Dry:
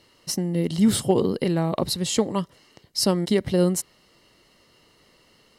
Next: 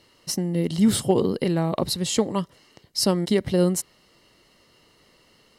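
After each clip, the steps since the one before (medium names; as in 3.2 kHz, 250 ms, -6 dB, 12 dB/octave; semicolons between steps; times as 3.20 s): no audible change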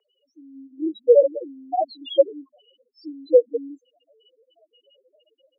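loudest bins only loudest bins 1; level rider gain up to 11.5 dB; mistuned SSB +100 Hz 410–2800 Hz; trim +8 dB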